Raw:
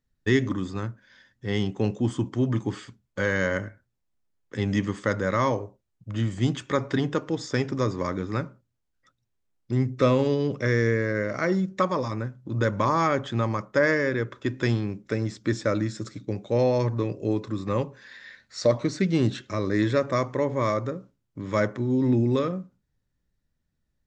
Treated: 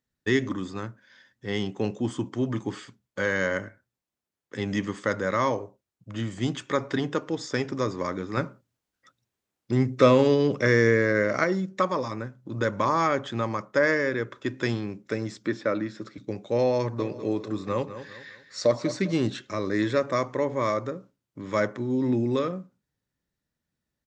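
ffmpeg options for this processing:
-filter_complex "[0:a]asettb=1/sr,asplit=3[s0][s1][s2];[s0]atrim=end=8.374[s3];[s1]atrim=start=8.37:end=11.44,asetpts=PTS-STARTPTS,afade=t=in:d=0.004:c=qsin,afade=t=out:st=3.066:d=0.004:c=qsin,acontrast=27[s4];[s2]atrim=start=11.436[s5];[s3][s4]acrossfade=d=0.004:c1=hsin:c2=qsin[s6];[s6][s5]acrossfade=d=0.004:c1=qsin:c2=hsin,asettb=1/sr,asplit=3[s7][s8][s9];[s7]atrim=end=15.474[s10];[s8]atrim=start=15.47:end=16.18,asetpts=PTS-STARTPTS,afade=t=in:d=0.004:c=qsin,afade=t=out:st=0.706:d=0.004:c=qsin,highpass=140,lowpass=3400[s11];[s9]atrim=start=16.176[s12];[s10][s11]acrossfade=d=0.004:c1=hsin:c2=qsin[s13];[s13][s12]acrossfade=d=0.004:c1=qsin:c2=hsin,asplit=3[s14][s15][s16];[s14]afade=t=out:st=16.98:d=0.02[s17];[s15]aecho=1:1:200|400|600|800:0.251|0.0929|0.0344|0.0127,afade=t=in:st=16.98:d=0.02,afade=t=out:st=19.19:d=0.02[s18];[s16]afade=t=in:st=19.19:d=0.02[s19];[s17][s18][s19]amix=inputs=3:normalize=0,highpass=f=210:p=1"

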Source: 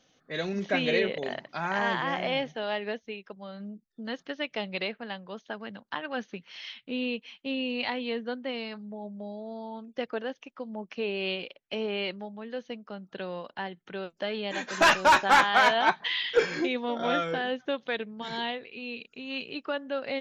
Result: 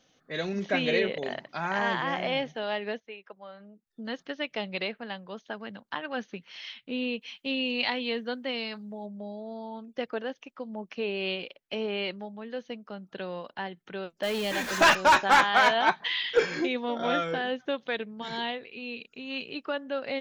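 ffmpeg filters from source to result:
-filter_complex "[0:a]asettb=1/sr,asplit=3[s0][s1][s2];[s0]atrim=end=3.004[s3];[s1]atrim=start=3:end=3.87,asetpts=PTS-STARTPTS,afade=t=in:d=0.004:c=qsin,afade=t=out:st=0.866:d=0.004:c=qsin,acrossover=split=440 2900:gain=0.224 1 0.251[s4][s5][s6];[s4][s5][s6]amix=inputs=3:normalize=0[s7];[s2]atrim=start=3.866[s8];[s3][s7]acrossfade=d=0.004:c1=hsin:c2=qsin[s9];[s9][s8]acrossfade=d=0.004:c1=qsin:c2=hsin,asettb=1/sr,asplit=3[s10][s11][s12];[s10]atrim=end=7.214[s13];[s11]atrim=start=7.21:end=9.06,asetpts=PTS-STARTPTS,afade=t=in:d=0.004:c=qsin,afade=t=out:st=1.846:d=0.004:c=qsin,highshelf=f=2600:g=8[s14];[s12]atrim=start=9.056[s15];[s13][s14]acrossfade=d=0.004:c1=hsin:c2=qsin[s16];[s16][s15]acrossfade=d=0.004:c1=qsin:c2=hsin,asettb=1/sr,asplit=3[s17][s18][s19];[s17]atrim=end=14.234[s20];[s18]atrim=start=14.23:end=14.95,asetpts=PTS-STARTPTS,afade=t=in:d=0.004:c=qsin,afade=t=out:st=0.716:d=0.004:c=qsin,aeval=exprs='val(0)+0.5*0.0251*sgn(val(0))':c=same[s21];[s19]atrim=start=14.946[s22];[s20][s21]acrossfade=d=0.004:c1=hsin:c2=qsin[s23];[s23][s22]acrossfade=d=0.004:c1=qsin:c2=hsin"

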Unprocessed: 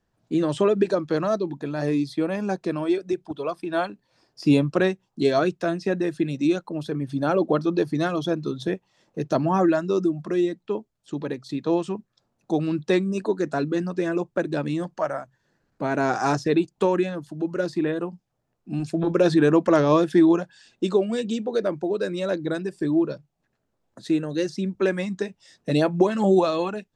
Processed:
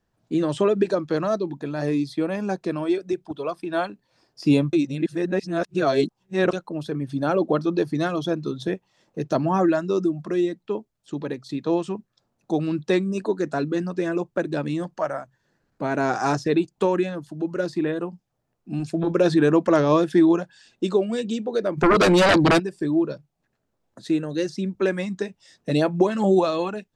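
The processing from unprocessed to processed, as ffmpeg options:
-filter_complex "[0:a]asplit=3[s0][s1][s2];[s0]afade=t=out:st=21.77:d=0.02[s3];[s1]aeval=exprs='0.237*sin(PI/2*4.47*val(0)/0.237)':c=same,afade=t=in:st=21.77:d=0.02,afade=t=out:st=22.58:d=0.02[s4];[s2]afade=t=in:st=22.58:d=0.02[s5];[s3][s4][s5]amix=inputs=3:normalize=0,asplit=3[s6][s7][s8];[s6]atrim=end=4.732[s9];[s7]atrim=start=4.728:end=6.532,asetpts=PTS-STARTPTS,areverse[s10];[s8]atrim=start=6.528[s11];[s9][s10]acrossfade=d=0.004:c1=hsin:c2=hsin[s12];[s12][s11]acrossfade=d=0.004:c1=hsin:c2=hsin"

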